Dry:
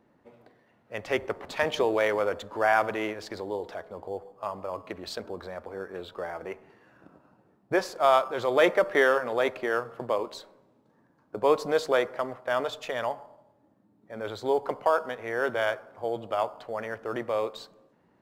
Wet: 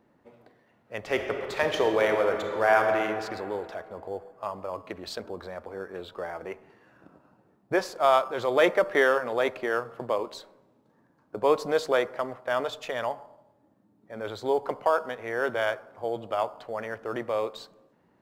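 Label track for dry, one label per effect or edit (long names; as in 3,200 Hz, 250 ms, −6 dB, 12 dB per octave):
0.980000	3.010000	thrown reverb, RT60 2.4 s, DRR 3.5 dB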